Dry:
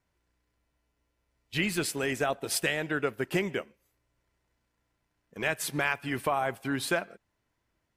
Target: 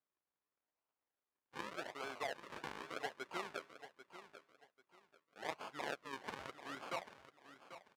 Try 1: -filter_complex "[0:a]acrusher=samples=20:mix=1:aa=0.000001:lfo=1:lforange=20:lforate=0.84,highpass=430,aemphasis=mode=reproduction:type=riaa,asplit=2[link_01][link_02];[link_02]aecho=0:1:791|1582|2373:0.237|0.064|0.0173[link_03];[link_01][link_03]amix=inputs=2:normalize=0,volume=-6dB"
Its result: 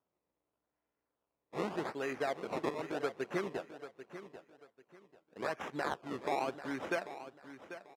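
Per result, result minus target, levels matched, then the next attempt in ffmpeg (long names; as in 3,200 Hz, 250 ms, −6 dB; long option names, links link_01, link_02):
sample-and-hold swept by an LFO: distortion −6 dB; 500 Hz band +3.0 dB
-filter_complex "[0:a]acrusher=samples=46:mix=1:aa=0.000001:lfo=1:lforange=46:lforate=0.84,highpass=430,aemphasis=mode=reproduction:type=riaa,asplit=2[link_01][link_02];[link_02]aecho=0:1:791|1582|2373:0.237|0.064|0.0173[link_03];[link_01][link_03]amix=inputs=2:normalize=0,volume=-6dB"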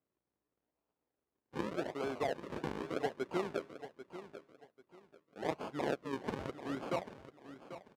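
500 Hz band +3.5 dB
-filter_complex "[0:a]acrusher=samples=46:mix=1:aa=0.000001:lfo=1:lforange=46:lforate=0.84,highpass=1000,aemphasis=mode=reproduction:type=riaa,asplit=2[link_01][link_02];[link_02]aecho=0:1:791|1582|2373:0.237|0.064|0.0173[link_03];[link_01][link_03]amix=inputs=2:normalize=0,volume=-6dB"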